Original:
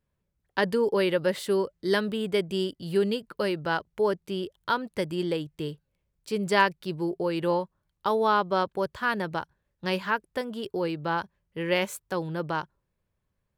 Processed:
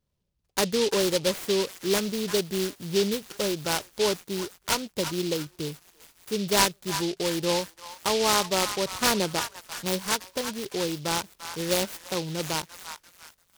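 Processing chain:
0:09.00–0:09.41: parametric band 420 Hz +10.5 dB → +2 dB 2.3 octaves
on a send: echo through a band-pass that steps 344 ms, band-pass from 1,300 Hz, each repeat 0.7 octaves, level −7.5 dB
on the sum: short delay modulated by noise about 3,800 Hz, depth 0.14 ms

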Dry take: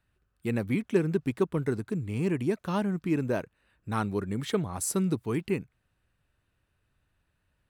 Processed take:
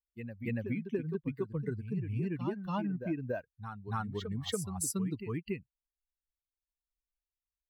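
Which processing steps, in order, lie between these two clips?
spectral dynamics exaggerated over time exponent 2
downward compressor 10 to 1, threshold −32 dBFS, peak gain reduction 12.5 dB
on a send: backwards echo 284 ms −8 dB
on the sum: level +1.5 dB

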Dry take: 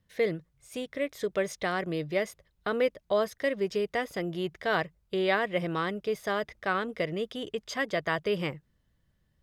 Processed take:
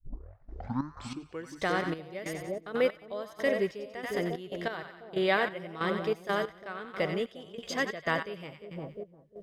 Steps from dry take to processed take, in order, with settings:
turntable start at the beginning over 1.64 s
echo with a time of its own for lows and highs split 780 Hz, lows 353 ms, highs 91 ms, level −7 dB
gate pattern "x..xx.x...x" 93 BPM −12 dB

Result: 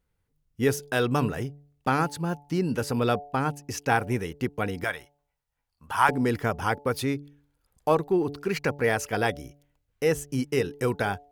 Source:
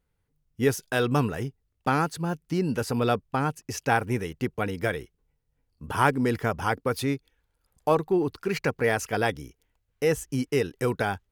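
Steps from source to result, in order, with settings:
0:04.84–0:06.09: low shelf with overshoot 580 Hz −11 dB, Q 1.5
hum removal 144 Hz, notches 6

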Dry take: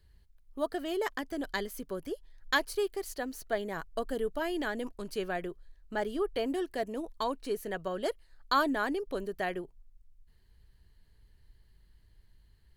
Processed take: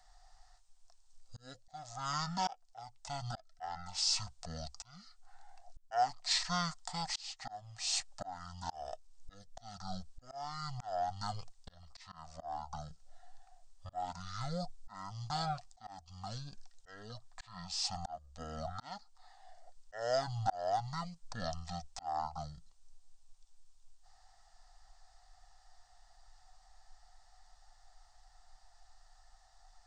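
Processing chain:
drawn EQ curve 120 Hz 0 dB, 870 Hz −20 dB, 1,700 Hz +13 dB, 4,900 Hz +1 dB, 12,000 Hz +14 dB
wrong playback speed 78 rpm record played at 33 rpm
volume swells 530 ms
level +1 dB

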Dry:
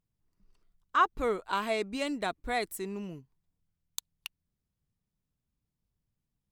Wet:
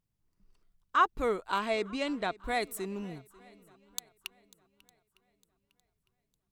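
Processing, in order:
0:01.58–0:02.35: low-pass filter 8,200 Hz → 4,800 Hz 12 dB per octave
feedback echo with a long and a short gap by turns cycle 906 ms, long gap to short 1.5 to 1, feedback 32%, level −22.5 dB

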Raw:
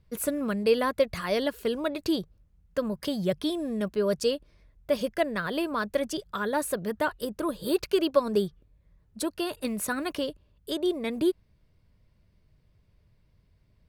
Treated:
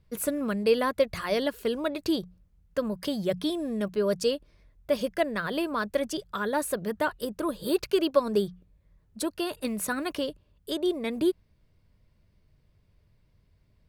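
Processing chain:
mains-hum notches 60/120/180 Hz

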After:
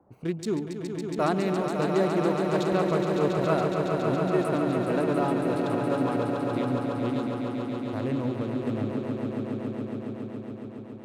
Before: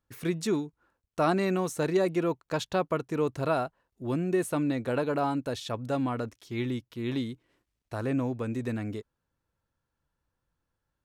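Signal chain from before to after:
adaptive Wiener filter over 25 samples
noise in a band 71–840 Hz −63 dBFS
echo that builds up and dies away 139 ms, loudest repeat 5, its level −7 dB

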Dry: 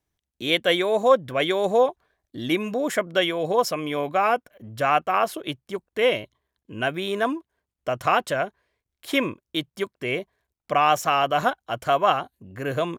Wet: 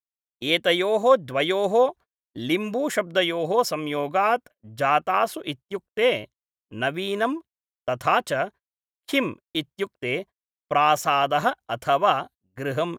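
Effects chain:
noise gate −39 dBFS, range −40 dB

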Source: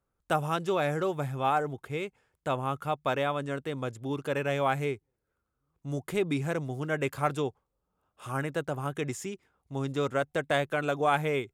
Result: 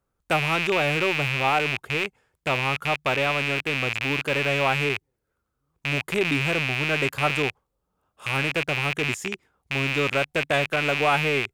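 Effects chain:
loose part that buzzes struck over −44 dBFS, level −17 dBFS
level +3.5 dB

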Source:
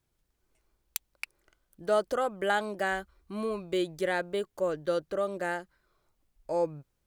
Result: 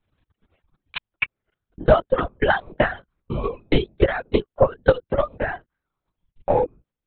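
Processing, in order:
transient designer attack +12 dB, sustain −3 dB
linear-prediction vocoder at 8 kHz whisper
reverb reduction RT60 1.2 s
level +4.5 dB

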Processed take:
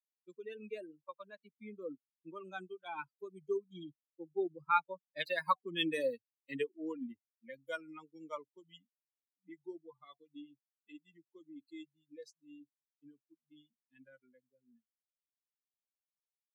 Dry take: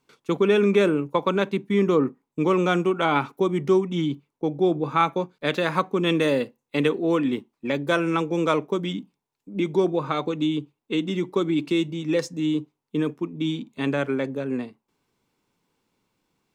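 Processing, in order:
spectral dynamics exaggerated over time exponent 3
source passing by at 0:05.50, 19 m/s, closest 14 metres
high-pass filter 310 Hz 12 dB per octave
level −2 dB

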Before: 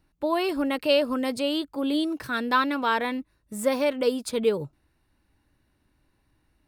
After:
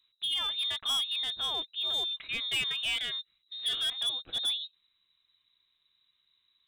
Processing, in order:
voice inversion scrambler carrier 3,900 Hz
gain into a clipping stage and back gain 20.5 dB
level −6 dB

